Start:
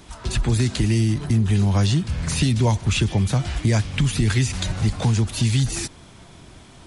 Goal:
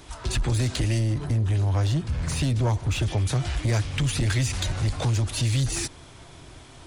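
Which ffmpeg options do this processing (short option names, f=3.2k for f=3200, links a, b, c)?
-filter_complex "[0:a]equalizer=f=200:t=o:w=0.27:g=-14.5,asoftclip=type=tanh:threshold=-18dB,asplit=3[a][b][c];[a]afade=t=out:st=0.98:d=0.02[d];[b]adynamicequalizer=threshold=0.00631:dfrequency=1600:dqfactor=0.7:tfrequency=1600:tqfactor=0.7:attack=5:release=100:ratio=0.375:range=3:mode=cutabove:tftype=highshelf,afade=t=in:st=0.98:d=0.02,afade=t=out:st=3.01:d=0.02[e];[c]afade=t=in:st=3.01:d=0.02[f];[d][e][f]amix=inputs=3:normalize=0"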